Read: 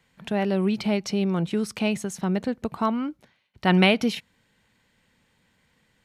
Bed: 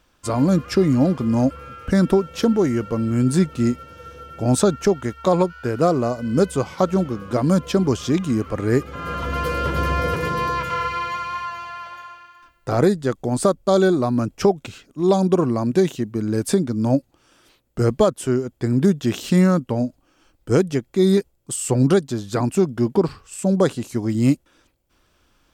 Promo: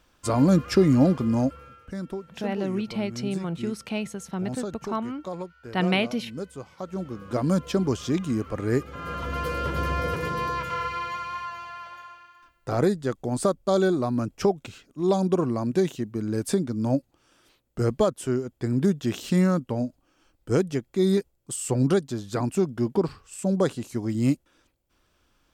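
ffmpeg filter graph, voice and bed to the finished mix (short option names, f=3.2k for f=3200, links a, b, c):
-filter_complex "[0:a]adelay=2100,volume=-5dB[a];[1:a]volume=10dB,afade=t=out:st=1.08:d=0.8:silence=0.16788,afade=t=in:st=6.84:d=0.53:silence=0.266073[b];[a][b]amix=inputs=2:normalize=0"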